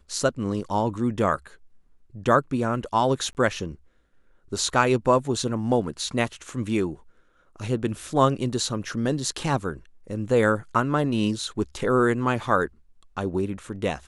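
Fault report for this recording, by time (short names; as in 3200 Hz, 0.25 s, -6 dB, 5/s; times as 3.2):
3.33–3.35 gap 19 ms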